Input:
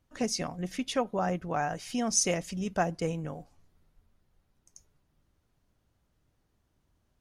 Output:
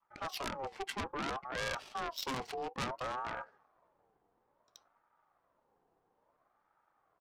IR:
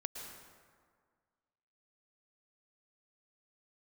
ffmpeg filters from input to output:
-af "highpass=220,adynamicequalizer=threshold=0.00631:dfrequency=570:dqfactor=1.2:tfrequency=570:tqfactor=1.2:attack=5:release=100:ratio=0.375:range=2:mode=cutabove:tftype=bell,areverse,acompressor=threshold=-38dB:ratio=6,areverse,asetrate=33038,aresample=44100,atempo=1.33484,asoftclip=type=tanh:threshold=-32.5dB,adynamicsmooth=sensitivity=7.5:basefreq=590,aeval=exprs='0.02*sin(PI/2*1.78*val(0)/0.02)':c=same,crystalizer=i=8:c=0,aeval=exprs='val(0)*sin(2*PI*830*n/s+830*0.3/0.59*sin(2*PI*0.59*n/s))':c=same,volume=1dB"

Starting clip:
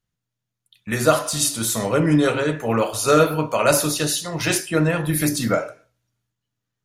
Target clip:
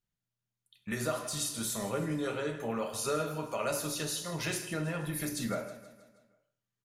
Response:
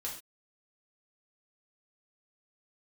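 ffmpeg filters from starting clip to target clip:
-filter_complex "[0:a]acompressor=threshold=-25dB:ratio=2.5,aecho=1:1:159|318|477|636|795:0.178|0.0925|0.0481|0.025|0.013,asplit=2[a][b];[1:a]atrim=start_sample=2205,adelay=5[c];[b][c]afir=irnorm=-1:irlink=0,volume=-7dB[d];[a][d]amix=inputs=2:normalize=0,volume=-9dB"

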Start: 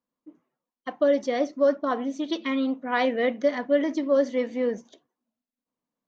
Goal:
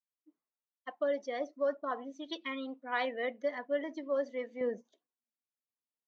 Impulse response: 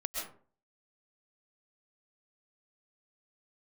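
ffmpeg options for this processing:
-af "asetnsamples=n=441:p=0,asendcmd='4.61 highpass f 330',highpass=f=840:p=1,afftdn=nr=13:nf=-39,adynamicequalizer=threshold=0.01:dfrequency=1600:dqfactor=0.7:tfrequency=1600:tqfactor=0.7:attack=5:release=100:ratio=0.375:range=2:mode=cutabove:tftype=highshelf,volume=-5.5dB"

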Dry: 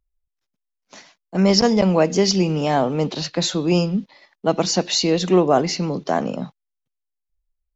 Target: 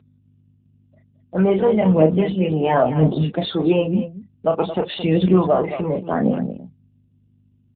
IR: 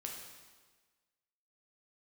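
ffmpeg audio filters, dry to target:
-af "afftdn=nr=14:nf=-36,afftfilt=real='re*gte(hypot(re,im),0.0224)':imag='im*gte(hypot(re,im),0.0224)':win_size=1024:overlap=0.75,alimiter=limit=-9dB:level=0:latency=1:release=292,aphaser=in_gain=1:out_gain=1:delay=2.8:decay=0.58:speed=0.95:type=triangular,aeval=exprs='val(0)+0.00316*(sin(2*PI*50*n/s)+sin(2*PI*2*50*n/s)/2+sin(2*PI*3*50*n/s)/3+sin(2*PI*4*50*n/s)/4+sin(2*PI*5*50*n/s)/5)':c=same,aecho=1:1:32.07|221.6:0.501|0.282,volume=1.5dB" -ar 8000 -c:a libopencore_amrnb -b:a 7950

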